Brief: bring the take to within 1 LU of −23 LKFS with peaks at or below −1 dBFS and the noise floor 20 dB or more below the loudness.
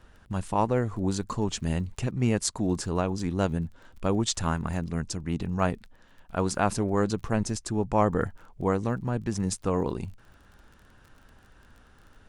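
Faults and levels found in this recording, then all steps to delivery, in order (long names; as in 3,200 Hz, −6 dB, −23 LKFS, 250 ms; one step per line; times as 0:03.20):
crackle rate 27 per second; integrated loudness −28.5 LKFS; sample peak −10.0 dBFS; target loudness −23.0 LKFS
→ click removal
level +5.5 dB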